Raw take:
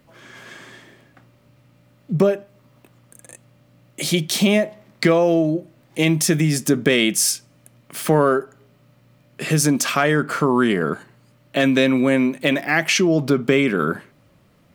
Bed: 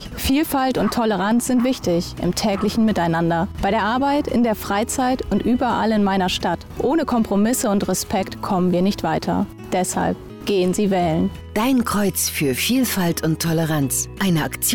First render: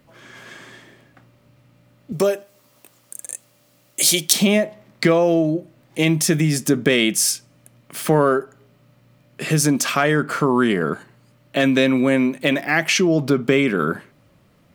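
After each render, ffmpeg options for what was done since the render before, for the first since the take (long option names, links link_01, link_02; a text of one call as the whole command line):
ffmpeg -i in.wav -filter_complex "[0:a]asettb=1/sr,asplit=3[link_01][link_02][link_03];[link_01]atrim=end=2.124[link_04];[link_02]atrim=start=2.12:end=4.33,asetpts=PTS-STARTPTS,afade=type=in:duration=0.004:curve=qsin,afade=type=out:start_time=2.206:duration=0.004:curve=qsin,bass=frequency=250:gain=-11,treble=frequency=4000:gain=13[link_05];[link_03]atrim=start=4.326[link_06];[link_04][link_05]acrossfade=duration=0.004:curve1=hsin:curve2=qsin[link_07];[link_07][link_06]acrossfade=duration=0.004:curve1=qsin:curve2=hsin" out.wav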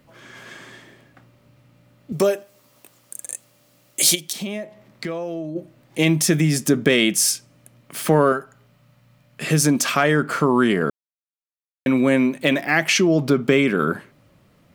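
ffmpeg -i in.wav -filter_complex "[0:a]asplit=3[link_01][link_02][link_03];[link_01]afade=type=out:start_time=4.14:duration=0.02[link_04];[link_02]acompressor=threshold=-47dB:ratio=1.5:attack=3.2:release=140:knee=1:detection=peak,afade=type=in:start_time=4.14:duration=0.02,afade=type=out:start_time=5.55:duration=0.02[link_05];[link_03]afade=type=in:start_time=5.55:duration=0.02[link_06];[link_04][link_05][link_06]amix=inputs=3:normalize=0,asettb=1/sr,asplit=3[link_07][link_08][link_09];[link_07]atrim=end=8.324[link_10];[link_08]atrim=start=8.32:end=9.43,asetpts=PTS-STARTPTS,afade=type=in:duration=0.004:curve=qsin,afade=type=out:start_time=1.106:duration=0.004:curve=qsin,equalizer=frequency=360:width_type=o:width=0.77:gain=-12[link_11];[link_09]atrim=start=9.426[link_12];[link_10][link_11]acrossfade=duration=0.004:curve1=hsin:curve2=qsin[link_13];[link_13][link_12]acrossfade=duration=0.004:curve1=qsin:curve2=hsin,asplit=3[link_14][link_15][link_16];[link_14]atrim=end=10.9,asetpts=PTS-STARTPTS,afade=type=out:start_time=10.896:duration=0.004:curve=hsin[link_17];[link_15]atrim=start=10.9:end=11.86,asetpts=PTS-STARTPTS,volume=0[link_18];[link_16]atrim=start=11.86,asetpts=PTS-STARTPTS,afade=type=in:duration=0.004:curve=hsin[link_19];[link_17][link_18][link_19]concat=n=3:v=0:a=1" out.wav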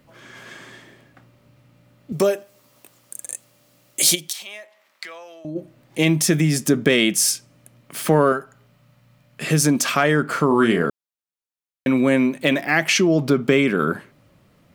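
ffmpeg -i in.wav -filter_complex "[0:a]asettb=1/sr,asplit=3[link_01][link_02][link_03];[link_01]atrim=end=4.324[link_04];[link_02]atrim=start=4.32:end=5.45,asetpts=PTS-STARTPTS,afade=type=in:duration=0.004:curve=qsin,afade=type=out:start_time=1.126:duration=0.004:curve=qsin,highpass=1100[link_05];[link_03]atrim=start=5.446[link_06];[link_04][link_05]acrossfade=duration=0.004:curve1=hsin:curve2=qsin[link_07];[link_07][link_06]acrossfade=duration=0.004:curve1=qsin:curve2=hsin,asettb=1/sr,asplit=3[link_08][link_09][link_10];[link_08]atrim=end=10.474[link_11];[link_09]atrim=start=10.47:end=10.87,asetpts=PTS-STARTPTS,afade=type=in:duration=0.004:curve=qsin,afade=type=out:start_time=0.396:duration=0.004:curve=qsin,asplit=2[link_12][link_13];[link_13]adelay=35,volume=-6.5dB[link_14];[link_12][link_14]amix=inputs=2:normalize=0,atrim=end_sample=17640[link_15];[link_10]atrim=start=10.866[link_16];[link_11][link_15]acrossfade=duration=0.004:curve1=hsin:curve2=qsin[link_17];[link_17][link_16]acrossfade=duration=0.004:curve1=qsin:curve2=hsin" out.wav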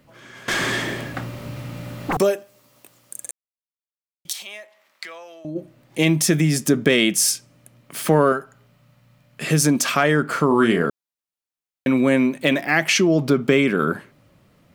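ffmpeg -i in.wav -filter_complex "[0:a]asettb=1/sr,asplit=3[link_01][link_02][link_03];[link_01]atrim=end=0.484[link_04];[link_02]atrim=start=0.48:end=2.17,asetpts=PTS-STARTPTS,afade=type=in:duration=0.004:curve=qsin,afade=type=out:start_time=1.686:duration=0.004:curve=qsin,aeval=exprs='0.126*sin(PI/2*7.94*val(0)/0.126)':channel_layout=same[link_05];[link_03]atrim=start=2.166[link_06];[link_04][link_05]acrossfade=duration=0.004:curve1=hsin:curve2=qsin[link_07];[link_07][link_06]acrossfade=duration=0.004:curve1=qsin:curve2=hsin,asplit=3[link_08][link_09][link_10];[link_08]atrim=end=3.31,asetpts=PTS-STARTPTS,afade=type=out:start_time=3.306:duration=0.004:curve=hsin[link_11];[link_09]atrim=start=3.31:end=4.25,asetpts=PTS-STARTPTS,volume=0[link_12];[link_10]atrim=start=4.25,asetpts=PTS-STARTPTS,afade=type=in:duration=0.004:curve=hsin[link_13];[link_11][link_12][link_13]concat=n=3:v=0:a=1" out.wav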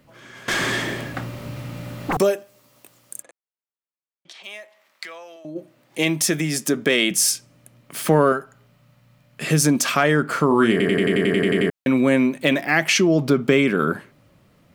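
ffmpeg -i in.wav -filter_complex "[0:a]asplit=3[link_01][link_02][link_03];[link_01]afade=type=out:start_time=3.21:duration=0.02[link_04];[link_02]highpass=260,lowpass=2200,afade=type=in:start_time=3.21:duration=0.02,afade=type=out:start_time=4.43:duration=0.02[link_05];[link_03]afade=type=in:start_time=4.43:duration=0.02[link_06];[link_04][link_05][link_06]amix=inputs=3:normalize=0,asettb=1/sr,asplit=3[link_07][link_08][link_09];[link_07]atrim=end=5.364[link_10];[link_08]atrim=start=5.36:end=7.11,asetpts=PTS-STARTPTS,afade=type=in:duration=0.004:curve=qsin,afade=type=out:start_time=1.746:duration=0.004:curve=qsin,highpass=frequency=350:poles=1[link_11];[link_09]atrim=start=7.106[link_12];[link_10][link_11]acrossfade=duration=0.004:curve1=hsin:curve2=qsin[link_13];[link_13][link_12]acrossfade=duration=0.004:curve1=qsin:curve2=hsin,asplit=12[link_14][link_15][link_16][link_17][link_18][link_19][link_20][link_21][link_22][link_23][link_24][link_25];[link_14]atrim=end=10.802[link_26];[link_15]atrim=start=10.708:end=10.802[link_27];[link_16]atrim=start=10.708:end=10.802[link_28];[link_17]atrim=start=10.708:end=10.802[link_29];[link_18]atrim=start=10.708:end=10.802[link_30];[link_19]atrim=start=10.708:end=10.802[link_31];[link_20]atrim=start=10.708:end=10.802[link_32];[link_21]atrim=start=10.708:end=10.802[link_33];[link_22]atrim=start=10.708:end=10.802[link_34];[link_23]atrim=start=10.708:end=10.802[link_35];[link_24]atrim=start=10.708:end=10.802[link_36];[link_25]atrim=start=11.698[link_37];[link_26][link_27]acrossfade=duration=0.004:curve1=hsin:curve2=hsin[link_38];[link_38][link_28]acrossfade=duration=0.004:curve1=hsin:curve2=hsin[link_39];[link_39][link_29]acrossfade=duration=0.004:curve1=hsin:curve2=hsin[link_40];[link_40][link_30]acrossfade=duration=0.004:curve1=hsin:curve2=hsin[link_41];[link_41][link_31]acrossfade=duration=0.004:curve1=hsin:curve2=hsin[link_42];[link_42][link_32]acrossfade=duration=0.004:curve1=hsin:curve2=hsin[link_43];[link_43][link_33]acrossfade=duration=0.004:curve1=hsin:curve2=hsin[link_44];[link_44][link_34]acrossfade=duration=0.004:curve1=hsin:curve2=hsin[link_45];[link_45][link_35]acrossfade=duration=0.004:curve1=hsin:curve2=hsin[link_46];[link_46][link_36]acrossfade=duration=0.004:curve1=hsin:curve2=hsin[link_47];[link_47][link_37]acrossfade=duration=0.004:curve1=hsin:curve2=hsin" out.wav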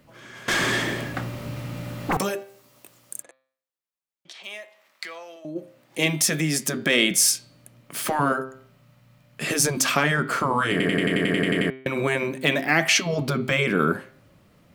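ffmpeg -i in.wav -af "bandreject=frequency=131.4:width_type=h:width=4,bandreject=frequency=262.8:width_type=h:width=4,bandreject=frequency=394.2:width_type=h:width=4,bandreject=frequency=525.6:width_type=h:width=4,bandreject=frequency=657:width_type=h:width=4,bandreject=frequency=788.4:width_type=h:width=4,bandreject=frequency=919.8:width_type=h:width=4,bandreject=frequency=1051.2:width_type=h:width=4,bandreject=frequency=1182.6:width_type=h:width=4,bandreject=frequency=1314:width_type=h:width=4,bandreject=frequency=1445.4:width_type=h:width=4,bandreject=frequency=1576.8:width_type=h:width=4,bandreject=frequency=1708.2:width_type=h:width=4,bandreject=frequency=1839.6:width_type=h:width=4,bandreject=frequency=1971:width_type=h:width=4,bandreject=frequency=2102.4:width_type=h:width=4,bandreject=frequency=2233.8:width_type=h:width=4,bandreject=frequency=2365.2:width_type=h:width=4,bandreject=frequency=2496.6:width_type=h:width=4,bandreject=frequency=2628:width_type=h:width=4,bandreject=frequency=2759.4:width_type=h:width=4,bandreject=frequency=2890.8:width_type=h:width=4,bandreject=frequency=3022.2:width_type=h:width=4,bandreject=frequency=3153.6:width_type=h:width=4,bandreject=frequency=3285:width_type=h:width=4,bandreject=frequency=3416.4:width_type=h:width=4,bandreject=frequency=3547.8:width_type=h:width=4,bandreject=frequency=3679.2:width_type=h:width=4,bandreject=frequency=3810.6:width_type=h:width=4,bandreject=frequency=3942:width_type=h:width=4,bandreject=frequency=4073.4:width_type=h:width=4,bandreject=frequency=4204.8:width_type=h:width=4,bandreject=frequency=4336.2:width_type=h:width=4,bandreject=frequency=4467.6:width_type=h:width=4,bandreject=frequency=4599:width_type=h:width=4,bandreject=frequency=4730.4:width_type=h:width=4,afftfilt=real='re*lt(hypot(re,im),0.794)':imag='im*lt(hypot(re,im),0.794)':win_size=1024:overlap=0.75" out.wav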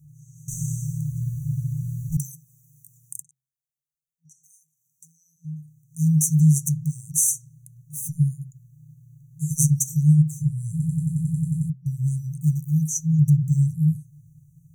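ffmpeg -i in.wav -af "afftfilt=real='re*(1-between(b*sr/4096,170,5800))':imag='im*(1-between(b*sr/4096,170,5800))':win_size=4096:overlap=0.75,equalizer=frequency=150:width=2.5:gain=14" out.wav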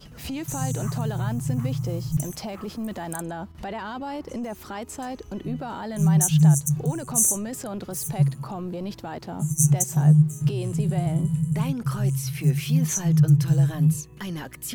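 ffmpeg -i in.wav -i bed.wav -filter_complex "[1:a]volume=-14dB[link_01];[0:a][link_01]amix=inputs=2:normalize=0" out.wav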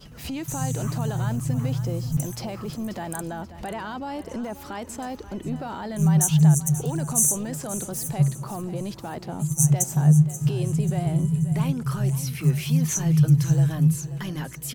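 ffmpeg -i in.wav -af "aecho=1:1:534|1068|1602|2136:0.2|0.0758|0.0288|0.0109" out.wav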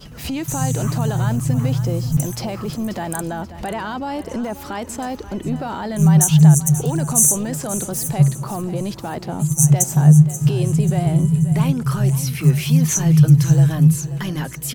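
ffmpeg -i in.wav -af "volume=6.5dB,alimiter=limit=-2dB:level=0:latency=1" out.wav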